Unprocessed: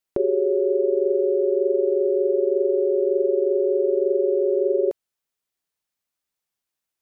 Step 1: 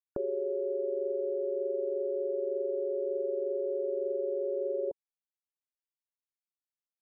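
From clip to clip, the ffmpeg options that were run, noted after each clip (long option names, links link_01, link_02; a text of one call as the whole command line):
ffmpeg -i in.wav -af "afftfilt=real='re*gte(hypot(re,im),0.01)':imag='im*gte(hypot(re,im),0.01)':win_size=1024:overlap=0.75,equalizer=frequency=380:width=4.4:gain=-7,volume=-8dB" out.wav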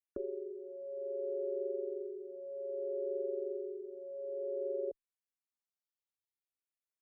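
ffmpeg -i in.wav -filter_complex "[0:a]asplit=2[link_01][link_02];[link_02]afreqshift=-0.61[link_03];[link_01][link_03]amix=inputs=2:normalize=1,volume=-4dB" out.wav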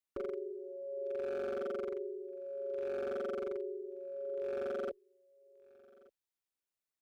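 ffmpeg -i in.wav -af "aeval=exprs='0.0224*(abs(mod(val(0)/0.0224+3,4)-2)-1)':channel_layout=same,aecho=1:1:1179:0.0631,volume=1dB" out.wav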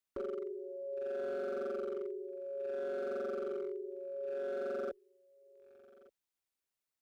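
ffmpeg -i in.wav -af "volume=35.5dB,asoftclip=hard,volume=-35.5dB,volume=1dB" out.wav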